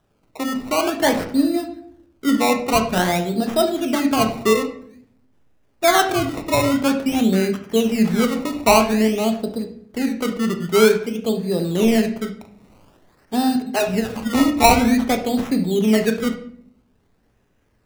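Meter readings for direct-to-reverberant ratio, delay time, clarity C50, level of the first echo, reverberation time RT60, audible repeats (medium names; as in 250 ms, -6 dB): 5.5 dB, no echo, 9.5 dB, no echo, 0.60 s, no echo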